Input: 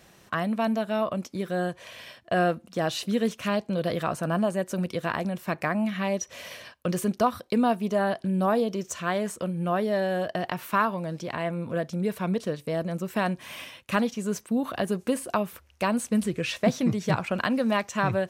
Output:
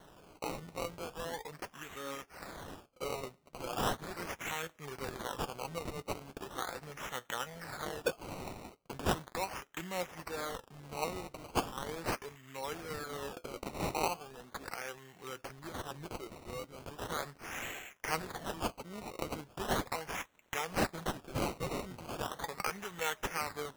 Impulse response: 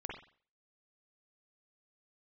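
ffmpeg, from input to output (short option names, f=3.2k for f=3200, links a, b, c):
-af "aderivative,asetrate=33957,aresample=44100,flanger=delay=3.5:depth=5.1:regen=61:speed=0.48:shape=triangular,acrusher=samples=18:mix=1:aa=0.000001:lfo=1:lforange=18:lforate=0.38,volume=9dB"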